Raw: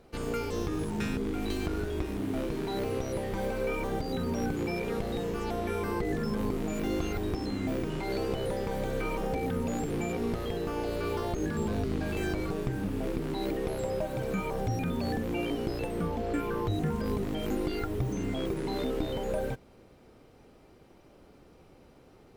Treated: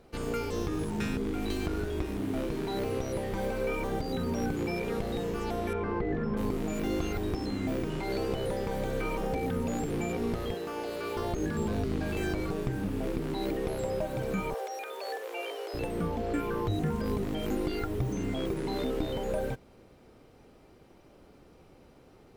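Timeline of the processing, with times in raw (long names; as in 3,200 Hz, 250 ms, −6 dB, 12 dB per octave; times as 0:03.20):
0:05.73–0:06.37: low-pass filter 2,200 Hz
0:10.54–0:11.17: high-pass filter 420 Hz 6 dB per octave
0:14.54–0:15.74: Butterworth high-pass 420 Hz 48 dB per octave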